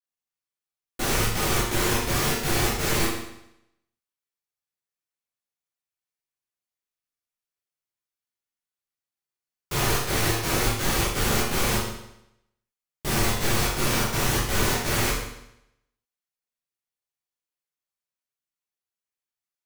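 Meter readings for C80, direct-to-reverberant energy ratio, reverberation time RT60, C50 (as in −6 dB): 5.0 dB, −8.5 dB, 0.80 s, 1.5 dB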